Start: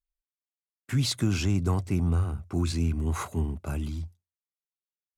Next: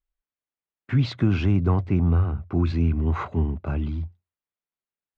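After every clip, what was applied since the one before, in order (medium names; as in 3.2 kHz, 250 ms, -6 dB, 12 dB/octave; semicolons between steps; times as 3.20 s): Bessel low-pass 2.3 kHz, order 4; trim +5 dB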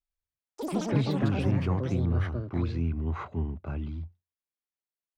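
ever faster or slower copies 106 ms, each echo +7 st, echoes 3; trim -7.5 dB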